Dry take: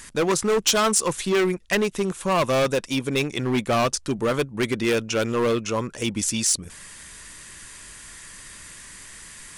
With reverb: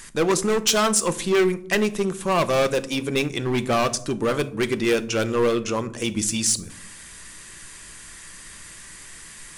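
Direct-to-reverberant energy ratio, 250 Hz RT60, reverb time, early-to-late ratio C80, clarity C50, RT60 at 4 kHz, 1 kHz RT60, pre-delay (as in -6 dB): 11.0 dB, 1.0 s, 0.65 s, 22.0 dB, 18.5 dB, 0.35 s, 0.55 s, 3 ms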